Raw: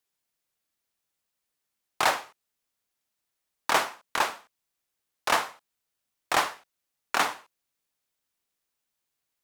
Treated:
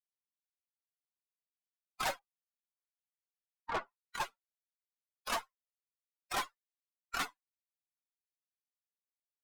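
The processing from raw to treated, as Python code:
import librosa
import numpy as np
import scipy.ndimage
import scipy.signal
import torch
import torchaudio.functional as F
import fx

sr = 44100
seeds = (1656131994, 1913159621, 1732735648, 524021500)

y = fx.bin_expand(x, sr, power=3.0)
y = fx.lowpass(y, sr, hz=1200.0, slope=12, at=(2.19, 4.01))
y = fx.tube_stage(y, sr, drive_db=33.0, bias=0.35)
y = y * 10.0 ** (3.0 / 20.0)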